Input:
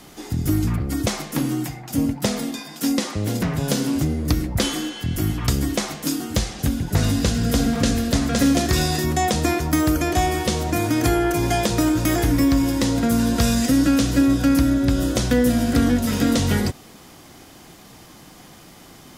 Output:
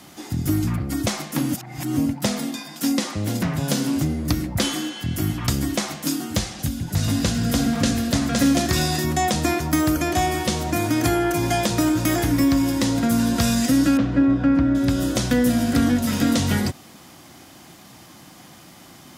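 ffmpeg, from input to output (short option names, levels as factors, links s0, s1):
-filter_complex "[0:a]asettb=1/sr,asplit=3[s0][s1][s2];[s0]atrim=end=6.474[s3];[s1]atrim=start=6.47:end=7.08,asetpts=PTS-STARTPTS,afade=t=in:d=0.004:c=qsin,afade=t=out:st=0.606:d=0.004:c=qsin,acrossover=split=180|3000[s4][s5][s6];[s5]acompressor=threshold=0.0178:ratio=2:attack=3.2:release=140:knee=2.83:detection=peak[s7];[s4][s7][s6]amix=inputs=3:normalize=0[s8];[s2]atrim=start=7.076[s9];[s3][s8]acrossfade=d=0.004:c1=hsin:c2=qsin[s10];[s10][s9]acrossfade=d=0.004:c1=qsin:c2=hsin,asettb=1/sr,asplit=3[s11][s12][s13];[s11]atrim=end=13.974[s14];[s12]atrim=start=13.97:end=14.75,asetpts=PTS-STARTPTS,afade=t=in:d=0.004:c=qsin,afade=t=out:st=0.776:d=0.004:c=qsin,lowpass=1800[s15];[s13]atrim=start=14.746[s16];[s14][s15]acrossfade=d=0.004:c1=hsin:c2=qsin[s17];[s17][s16]acrossfade=d=0.004:c1=qsin:c2=hsin,asplit=3[s18][s19][s20];[s18]atrim=end=1.522[s21];[s19]atrim=start=1.518:end=1.972,asetpts=PTS-STARTPTS,areverse[s22];[s20]atrim=start=1.968[s23];[s21][s22]acrossfade=d=0.004:c1=hsin:c2=hsin[s24];[s24][s23]acrossfade=d=0.004:c1=hsin:c2=hsin,highpass=81,equalizer=f=440:t=o:w=0.23:g=-9.5"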